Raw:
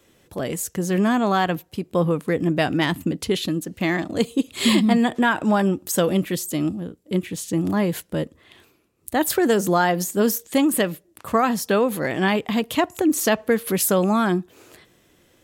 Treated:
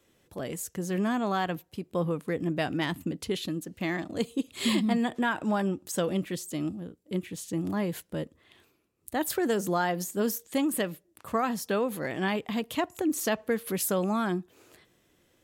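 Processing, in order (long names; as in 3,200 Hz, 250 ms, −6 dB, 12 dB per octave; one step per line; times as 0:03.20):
0:05.63–0:06.56: parametric band 13,000 Hz −7 dB 0.46 octaves
level −8.5 dB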